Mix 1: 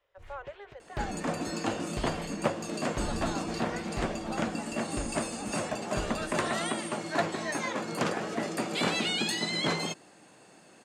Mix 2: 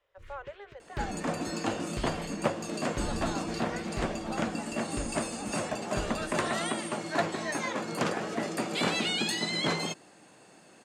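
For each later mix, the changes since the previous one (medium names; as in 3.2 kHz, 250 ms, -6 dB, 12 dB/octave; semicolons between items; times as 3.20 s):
first sound: add Butterworth band-stop 740 Hz, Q 1.2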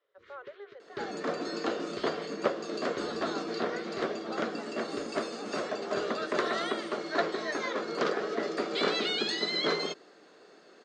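speech -4.0 dB; master: add cabinet simulation 300–5500 Hz, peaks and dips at 420 Hz +9 dB, 870 Hz -7 dB, 1.3 kHz +4 dB, 2.6 kHz -6 dB, 4 kHz +3 dB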